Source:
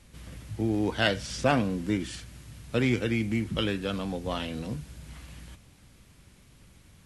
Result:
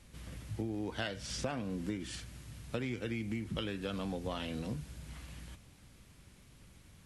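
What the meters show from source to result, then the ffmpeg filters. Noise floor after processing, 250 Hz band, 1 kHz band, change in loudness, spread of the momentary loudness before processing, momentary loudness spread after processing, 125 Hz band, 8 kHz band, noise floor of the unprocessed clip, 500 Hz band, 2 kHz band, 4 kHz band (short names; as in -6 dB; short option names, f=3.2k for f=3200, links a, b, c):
-60 dBFS, -9.5 dB, -11.5 dB, -10.5 dB, 20 LU, 21 LU, -9.0 dB, -5.0 dB, -57 dBFS, -10.5 dB, -11.5 dB, -9.5 dB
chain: -af "acompressor=threshold=-30dB:ratio=12,volume=-3dB"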